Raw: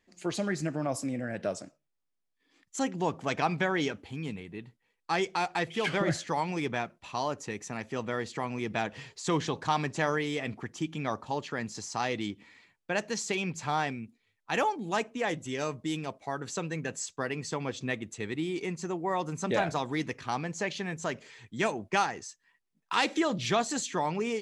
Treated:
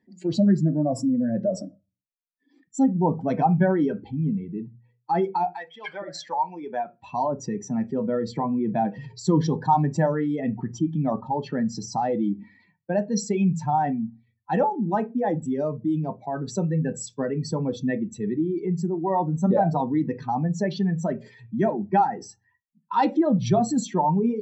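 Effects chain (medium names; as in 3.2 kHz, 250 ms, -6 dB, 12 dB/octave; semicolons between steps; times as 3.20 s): spectral contrast enhancement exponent 2; 5.52–7.00 s: high-pass 1.5 kHz -> 450 Hz 12 dB/octave; reverberation RT60 0.20 s, pre-delay 3 ms, DRR 6.5 dB; trim -4.5 dB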